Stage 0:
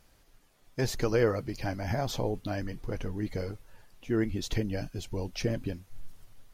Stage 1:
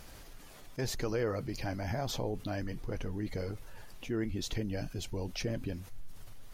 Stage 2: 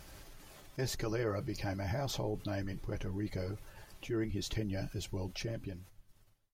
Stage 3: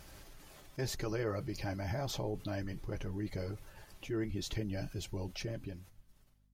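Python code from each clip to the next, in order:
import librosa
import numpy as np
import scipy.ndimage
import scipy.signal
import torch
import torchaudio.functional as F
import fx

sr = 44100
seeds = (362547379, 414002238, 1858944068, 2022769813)

y1 = fx.env_flatten(x, sr, amount_pct=50)
y1 = y1 * librosa.db_to_amplitude(-8.5)
y2 = fx.fade_out_tail(y1, sr, length_s=1.4)
y2 = fx.notch_comb(y2, sr, f0_hz=240.0)
y3 = fx.add_hum(y2, sr, base_hz=50, snr_db=31)
y3 = y3 * librosa.db_to_amplitude(-1.0)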